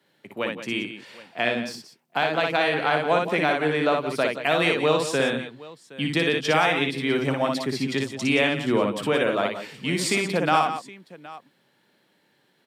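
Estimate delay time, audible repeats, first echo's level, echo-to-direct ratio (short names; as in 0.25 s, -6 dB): 59 ms, 3, -3.5 dB, -2.5 dB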